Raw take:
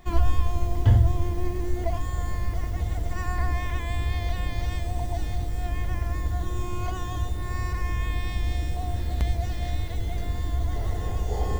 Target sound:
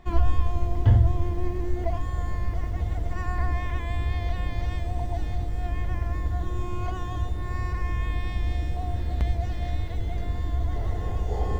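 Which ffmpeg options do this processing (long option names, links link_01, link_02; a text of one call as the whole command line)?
ffmpeg -i in.wav -af "lowpass=frequency=2700:poles=1" out.wav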